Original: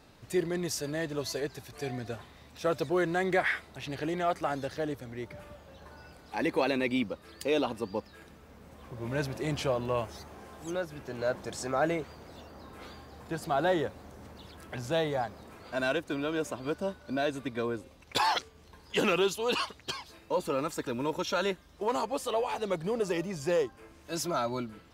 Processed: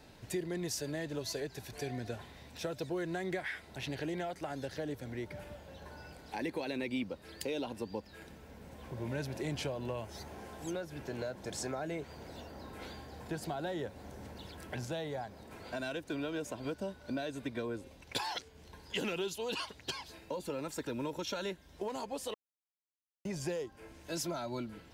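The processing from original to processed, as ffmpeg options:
ffmpeg -i in.wav -filter_complex "[0:a]asplit=5[link_01][link_02][link_03][link_04][link_05];[link_01]atrim=end=14.852[link_06];[link_02]atrim=start=14.848:end=15.512,asetpts=PTS-STARTPTS,volume=-3.5dB[link_07];[link_03]atrim=start=15.508:end=22.34,asetpts=PTS-STARTPTS,afade=type=out:start_time=6.828:duration=0.004:curve=hsin[link_08];[link_04]atrim=start=22.34:end=23.25,asetpts=PTS-STARTPTS,volume=0[link_09];[link_05]atrim=start=23.25,asetpts=PTS-STARTPTS,afade=type=in:duration=0.004:curve=hsin[link_10];[link_06][link_07]acrossfade=duration=0.004:curve1=hsin:curve2=hsin[link_11];[link_08][link_09][link_10]concat=n=3:v=0:a=1[link_12];[link_11][link_12]acrossfade=duration=0.004:curve1=hsin:curve2=hsin,acompressor=threshold=-38dB:ratio=2,bandreject=frequency=1200:width=5.5,acrossover=split=320|3000[link_13][link_14][link_15];[link_14]acompressor=threshold=-38dB:ratio=6[link_16];[link_13][link_16][link_15]amix=inputs=3:normalize=0,volume=1dB" out.wav

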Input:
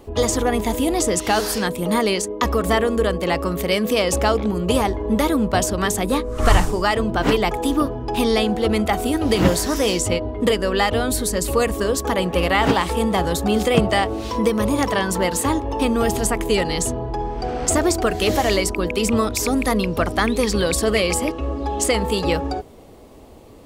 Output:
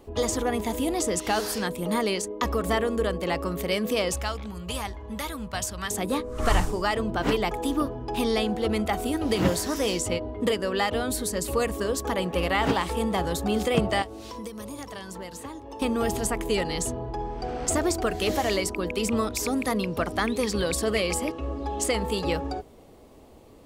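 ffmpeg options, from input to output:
ffmpeg -i in.wav -filter_complex "[0:a]asettb=1/sr,asplit=3[link_01][link_02][link_03];[link_01]atrim=end=4.124[link_04];[link_02]atrim=start=4.12:end=5.91,asetpts=PTS-STARTPTS,afade=type=in:duration=0.004:curve=qsin,afade=type=out:start_time=1.786:duration=0.004:curve=qsin,equalizer=frequency=360:width=0.61:gain=-14[link_05];[link_03]atrim=start=5.906[link_06];[link_04][link_05]acrossfade=duration=0.004:curve1=hsin:curve2=qsin[link_07];[link_07][link_06]acrossfade=duration=0.004:curve1=qsin:curve2=hsin,asettb=1/sr,asplit=3[link_08][link_09][link_10];[link_08]atrim=end=14.024[link_11];[link_09]atrim=start=14.02:end=15.82,asetpts=PTS-STARTPTS,afade=type=in:duration=0.004:curve=qsin,afade=type=out:start_time=1.796:duration=0.004:curve=qsin,acrossover=split=160|4200[link_12][link_13][link_14];[link_12]acompressor=threshold=-41dB:ratio=4[link_15];[link_13]acompressor=threshold=-32dB:ratio=4[link_16];[link_14]acompressor=threshold=-39dB:ratio=4[link_17];[link_15][link_16][link_17]amix=inputs=3:normalize=0[link_18];[link_10]atrim=start=15.816[link_19];[link_11][link_18]acrossfade=duration=0.004:curve1=hsin:curve2=qsin[link_20];[link_20][link_19]acrossfade=duration=0.004:curve1=qsin:curve2=hsin,bandreject=frequency=50:width_type=h:width=6,bandreject=frequency=100:width_type=h:width=6,volume=-6.5dB" out.wav

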